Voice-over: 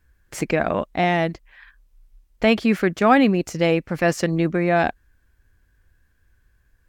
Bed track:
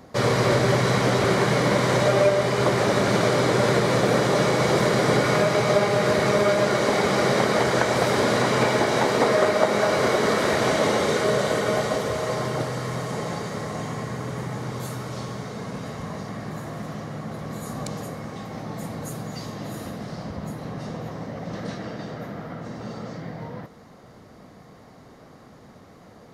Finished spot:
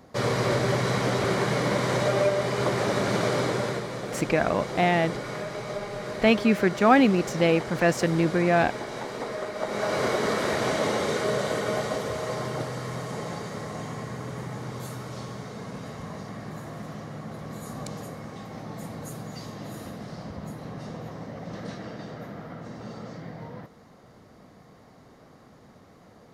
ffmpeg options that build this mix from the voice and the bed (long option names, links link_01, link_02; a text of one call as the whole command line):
ffmpeg -i stem1.wav -i stem2.wav -filter_complex "[0:a]adelay=3800,volume=-2.5dB[link_01];[1:a]volume=4.5dB,afade=type=out:start_time=3.39:duration=0.5:silence=0.354813,afade=type=in:start_time=9.54:duration=0.44:silence=0.354813[link_02];[link_01][link_02]amix=inputs=2:normalize=0" out.wav